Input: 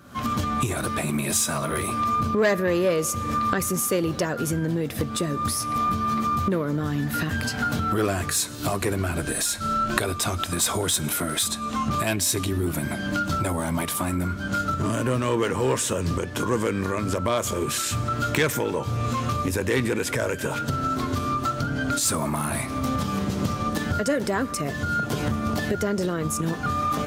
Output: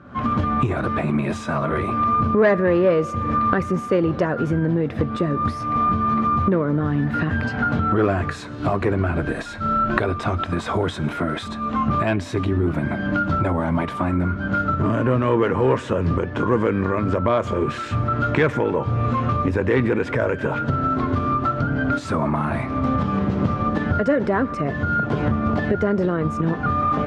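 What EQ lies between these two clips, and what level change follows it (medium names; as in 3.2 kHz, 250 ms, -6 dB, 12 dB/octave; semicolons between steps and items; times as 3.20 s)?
low-pass 1.8 kHz 12 dB/octave; +5.0 dB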